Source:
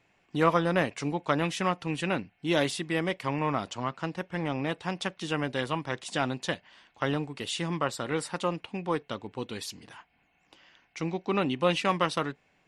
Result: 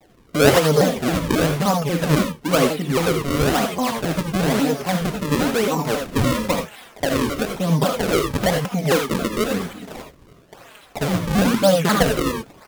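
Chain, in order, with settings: trilling pitch shifter -1.5 st, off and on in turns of 0.412 s; in parallel at -2.5 dB: negative-ratio compressor -38 dBFS, ratio -1; on the sum: treble ducked by the level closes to 1900 Hz, closed at -26.5 dBFS; bell 570 Hz +8 dB 0.99 oct; comb 4.3 ms, depth 96%; dynamic EQ 170 Hz, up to +7 dB, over -39 dBFS, Q 1; on a send: thin delay 0.603 s, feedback 58%, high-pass 2800 Hz, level -10.5 dB; on the sum: decimation with a swept rate 33×, swing 160% 1 Hz; non-linear reverb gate 0.11 s rising, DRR 3.5 dB; shaped vibrato saw down 3.7 Hz, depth 250 cents

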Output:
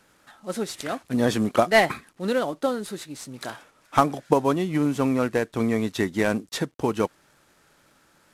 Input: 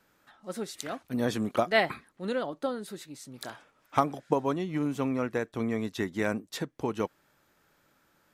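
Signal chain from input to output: CVSD 64 kbps; gain +7 dB

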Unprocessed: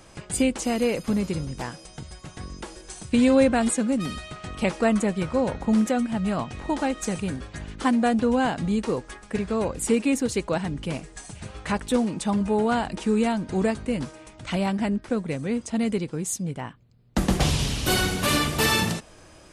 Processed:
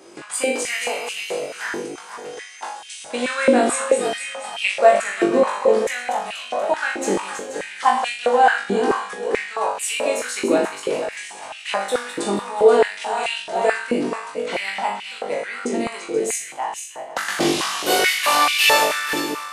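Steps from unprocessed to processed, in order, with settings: regenerating reverse delay 0.24 s, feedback 59%, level -7 dB; flutter echo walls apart 3.5 m, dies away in 0.47 s; stepped high-pass 4.6 Hz 340–2700 Hz

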